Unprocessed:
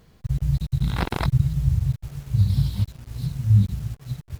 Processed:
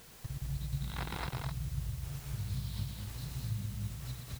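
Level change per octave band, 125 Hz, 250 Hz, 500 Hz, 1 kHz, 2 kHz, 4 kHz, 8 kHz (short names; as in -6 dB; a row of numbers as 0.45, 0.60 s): -16.5 dB, -15.5 dB, -12.5 dB, -10.5 dB, -9.0 dB, -7.0 dB, n/a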